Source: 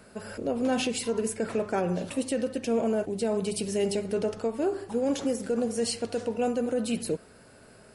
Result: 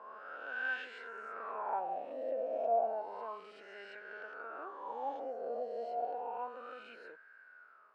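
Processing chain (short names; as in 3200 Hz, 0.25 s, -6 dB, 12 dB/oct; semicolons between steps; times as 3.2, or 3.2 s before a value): spectral swells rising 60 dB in 1.58 s; wah 0.31 Hz 640–1600 Hz, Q 13; BPF 310–3500 Hz; gain +5.5 dB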